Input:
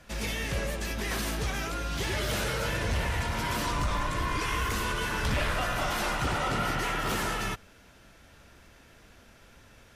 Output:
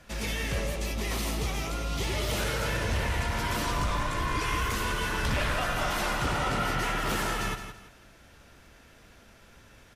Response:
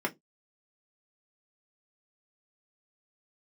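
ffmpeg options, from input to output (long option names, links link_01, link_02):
-filter_complex "[0:a]asettb=1/sr,asplit=3[link_01][link_02][link_03];[link_01]atrim=end=0.604[link_04];[link_02]atrim=start=0.6:end=2.38,asetpts=PTS-STARTPTS,afade=type=in:duration=0.004:curve=qsin,afade=type=out:start_time=1.776:duration=0.004:curve=qsin,equalizer=frequency=1600:width=7.7:gain=-15[link_05];[link_03]atrim=start=2.376[link_06];[link_04][link_05]acrossfade=duration=0.004:curve1=hsin:curve2=qsin[link_07];[link_07][link_06]acrossfade=duration=0.004:curve1=qsin:curve2=hsin,asplit=2[link_08][link_09];[link_09]aecho=0:1:166|332|498:0.335|0.1|0.0301[link_10];[link_08][link_10]amix=inputs=2:normalize=0"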